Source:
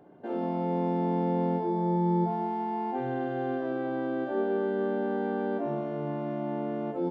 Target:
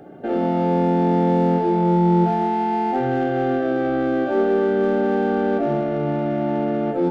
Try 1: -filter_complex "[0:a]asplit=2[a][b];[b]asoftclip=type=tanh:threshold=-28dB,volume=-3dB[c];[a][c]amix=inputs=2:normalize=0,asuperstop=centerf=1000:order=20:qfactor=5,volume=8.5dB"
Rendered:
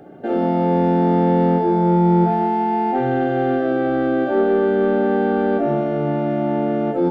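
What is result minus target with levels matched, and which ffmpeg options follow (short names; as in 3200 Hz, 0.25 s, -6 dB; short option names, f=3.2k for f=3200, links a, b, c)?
soft clip: distortion -6 dB
-filter_complex "[0:a]asplit=2[a][b];[b]asoftclip=type=tanh:threshold=-38.5dB,volume=-3dB[c];[a][c]amix=inputs=2:normalize=0,asuperstop=centerf=1000:order=20:qfactor=5,volume=8.5dB"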